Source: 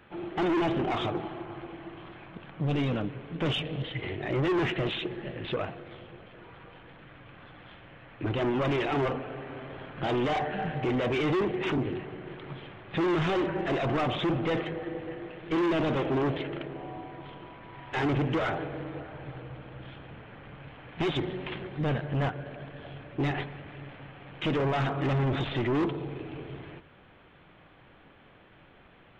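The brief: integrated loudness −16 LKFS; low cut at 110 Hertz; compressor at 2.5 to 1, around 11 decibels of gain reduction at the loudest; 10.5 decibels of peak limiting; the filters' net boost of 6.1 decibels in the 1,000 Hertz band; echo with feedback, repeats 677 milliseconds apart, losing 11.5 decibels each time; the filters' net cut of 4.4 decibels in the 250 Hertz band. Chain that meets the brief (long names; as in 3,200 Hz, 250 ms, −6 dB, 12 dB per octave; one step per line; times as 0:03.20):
high-pass filter 110 Hz
parametric band 250 Hz −7.5 dB
parametric band 1,000 Hz +8.5 dB
downward compressor 2.5 to 1, threshold −39 dBFS
brickwall limiter −34.5 dBFS
repeating echo 677 ms, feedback 27%, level −11.5 dB
level +28 dB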